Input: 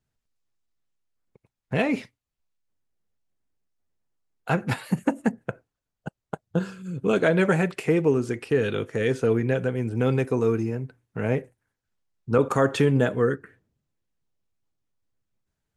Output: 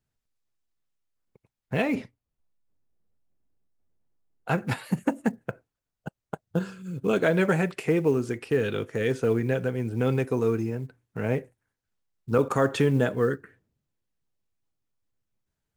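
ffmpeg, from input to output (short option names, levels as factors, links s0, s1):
-filter_complex "[0:a]acrusher=bits=9:mode=log:mix=0:aa=0.000001,asettb=1/sr,asplit=3[s0][s1][s2];[s0]atrim=end=1.954[s3];[s1]atrim=start=1.95:end=4.49,asetpts=PTS-STARTPTS,afade=t=in:d=0.004:c=qsin,afade=t=out:st=2.536:d=0.004:c=qsin,tiltshelf=f=1200:g=7[s4];[s2]atrim=start=4.486[s5];[s3][s4]acrossfade=d=0.004:c1=hsin:c2=qsin[s6];[s6][s5]acrossfade=d=0.004:c1=qsin:c2=hsin,volume=0.794"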